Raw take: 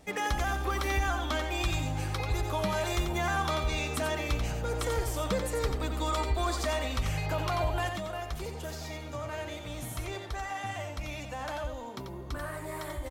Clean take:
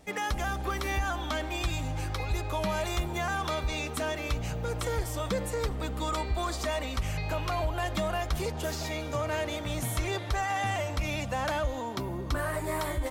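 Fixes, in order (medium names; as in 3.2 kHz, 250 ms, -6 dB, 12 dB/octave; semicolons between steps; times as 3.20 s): inverse comb 89 ms -6.5 dB; trim 0 dB, from 7.89 s +7 dB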